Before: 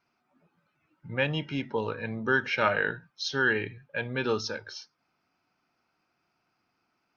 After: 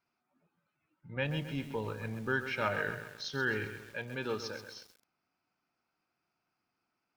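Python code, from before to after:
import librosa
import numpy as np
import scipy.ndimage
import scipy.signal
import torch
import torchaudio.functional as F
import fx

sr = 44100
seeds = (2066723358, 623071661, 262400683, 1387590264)

y = fx.low_shelf(x, sr, hz=120.0, db=11.5, at=(1.16, 3.66))
y = fx.echo_crushed(y, sr, ms=132, feedback_pct=55, bits=7, wet_db=-9.5)
y = y * librosa.db_to_amplitude(-8.0)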